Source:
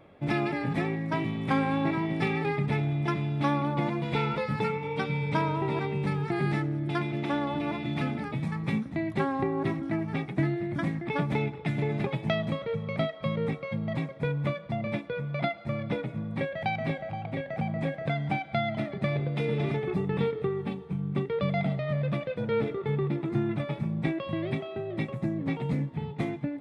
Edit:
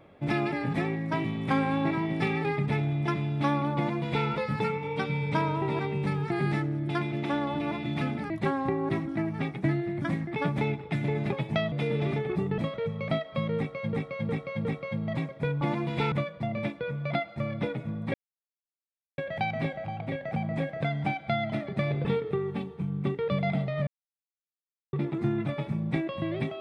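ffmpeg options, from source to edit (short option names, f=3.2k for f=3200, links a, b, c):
-filter_complex "[0:a]asplit=13[a][b][c][d][e][f][g][h][i][j][k][l][m];[a]atrim=end=8.302[n];[b]atrim=start=9.038:end=12.462[o];[c]atrim=start=19.298:end=20.162[p];[d]atrim=start=12.458:end=13.812[q];[e]atrim=start=13.448:end=13.812[r];[f]atrim=start=13.448:end=13.812[s];[g]atrim=start=13.448:end=14.412[t];[h]atrim=start=3.758:end=4.272[u];[i]atrim=start=14.408:end=16.43,asetpts=PTS-STARTPTS,afade=t=out:st=2.018:d=0.004:c=hsin,apad=pad_dur=1.04[v];[j]atrim=start=16.43:end=19.302,asetpts=PTS-STARTPTS,afade=t=in:d=0.004:c=hsin[w];[k]atrim=start=20.158:end=21.98,asetpts=PTS-STARTPTS,afade=t=out:st=1.818:d=0.004:c=hsin[x];[l]atrim=start=21.98:end=23.04,asetpts=PTS-STARTPTS,volume=0[y];[m]atrim=start=23.04,asetpts=PTS-STARTPTS,afade=t=in:d=0.004:c=hsin[z];[n][o]acrossfade=d=0.004:c1=hsin:c2=hsin[aa];[aa][p]acrossfade=d=0.004:c1=hsin:c2=hsin[ab];[ab][q]acrossfade=d=0.004:c1=hsin:c2=hsin[ac];[ac][r]acrossfade=d=0.004:c1=hsin:c2=hsin[ad];[ad][s]acrossfade=d=0.004:c1=hsin:c2=hsin[ae];[ae][t]acrossfade=d=0.004:c1=hsin:c2=hsin[af];[af][u]acrossfade=d=0.004:c1=hsin:c2=hsin[ag];[v][w]concat=n=2:v=0:a=1[ah];[ag][ah]acrossfade=d=0.004:c1=hsin:c2=hsin[ai];[x][y][z]concat=n=3:v=0:a=1[aj];[ai][aj]acrossfade=d=0.004:c1=hsin:c2=hsin"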